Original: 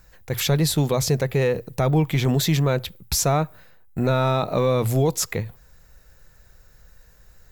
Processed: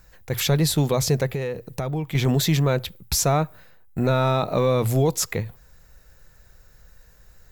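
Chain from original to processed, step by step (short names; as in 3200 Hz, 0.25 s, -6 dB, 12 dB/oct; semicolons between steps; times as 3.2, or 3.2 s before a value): 1.33–2.15 compressor 2.5:1, threshold -28 dBFS, peak gain reduction 8.5 dB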